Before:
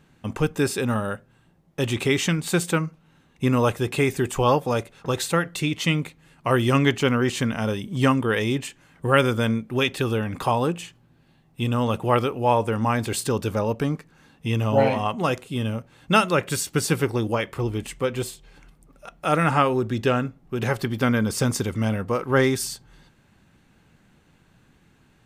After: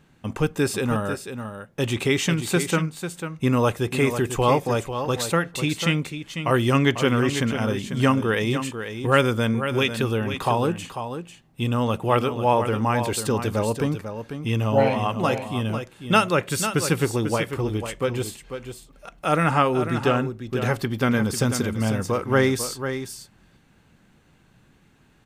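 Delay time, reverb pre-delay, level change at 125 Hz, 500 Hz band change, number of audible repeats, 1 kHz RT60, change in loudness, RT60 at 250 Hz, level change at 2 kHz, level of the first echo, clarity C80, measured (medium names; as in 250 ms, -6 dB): 495 ms, no reverb, +0.5 dB, +0.5 dB, 1, no reverb, 0.0 dB, no reverb, +0.5 dB, -9.0 dB, no reverb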